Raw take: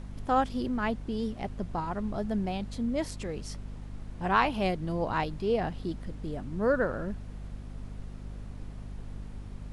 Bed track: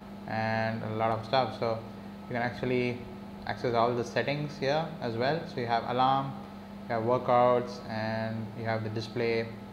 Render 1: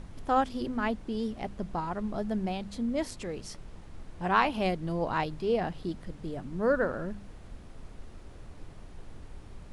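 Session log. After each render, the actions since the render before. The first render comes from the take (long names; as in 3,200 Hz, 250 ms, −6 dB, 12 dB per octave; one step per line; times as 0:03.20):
hum removal 50 Hz, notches 5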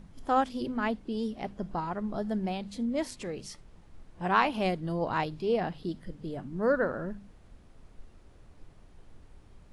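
noise reduction from a noise print 8 dB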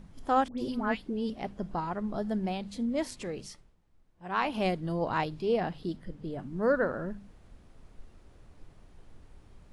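0:00.48–0:01.30: all-pass dispersion highs, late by 102 ms, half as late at 1,400 Hz
0:03.40–0:04.58: duck −15.5 dB, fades 0.36 s
0:05.96–0:06.39: high-shelf EQ 4,100 Hz −5.5 dB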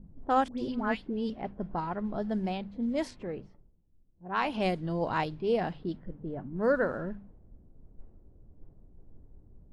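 low-pass that shuts in the quiet parts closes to 310 Hz, open at −25.5 dBFS
notch filter 1,200 Hz, Q 21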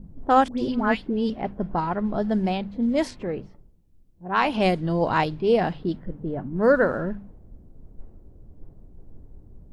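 level +8 dB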